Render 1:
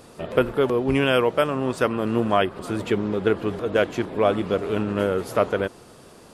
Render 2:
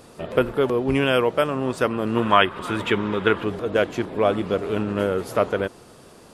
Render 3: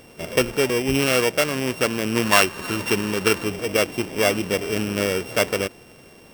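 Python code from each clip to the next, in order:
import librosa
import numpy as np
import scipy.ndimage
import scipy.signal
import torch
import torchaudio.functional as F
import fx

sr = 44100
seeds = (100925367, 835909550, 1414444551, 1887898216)

y1 = fx.spec_box(x, sr, start_s=2.17, length_s=1.27, low_hz=840.0, high_hz=3900.0, gain_db=8)
y2 = np.r_[np.sort(y1[:len(y1) // 16 * 16].reshape(-1, 16), axis=1).ravel(), y1[len(y1) // 16 * 16:]]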